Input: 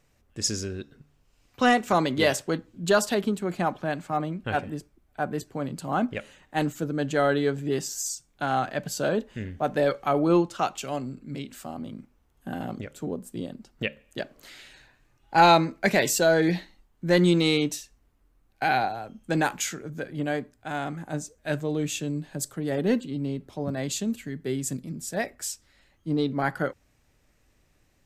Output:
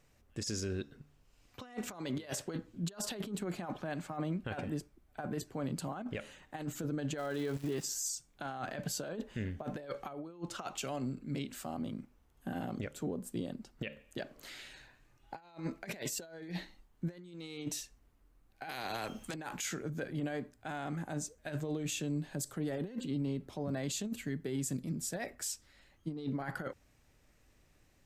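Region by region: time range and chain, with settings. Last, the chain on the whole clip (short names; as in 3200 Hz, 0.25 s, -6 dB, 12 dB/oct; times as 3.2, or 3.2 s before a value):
7.17–7.83 G.711 law mismatch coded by mu + level quantiser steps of 16 dB + crackle 490/s -40 dBFS
18.69–19.34 low shelf 130 Hz -11.5 dB + spectral compressor 2:1
whole clip: negative-ratio compressor -29 dBFS, ratio -0.5; limiter -22 dBFS; gain -6 dB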